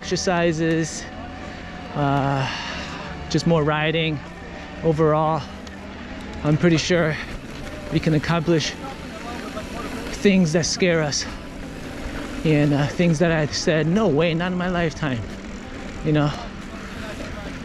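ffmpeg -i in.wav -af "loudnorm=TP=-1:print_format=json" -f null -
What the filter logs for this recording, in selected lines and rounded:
"input_i" : "-22.2",
"input_tp" : "-4.0",
"input_lra" : "5.0",
"input_thresh" : "-33.1",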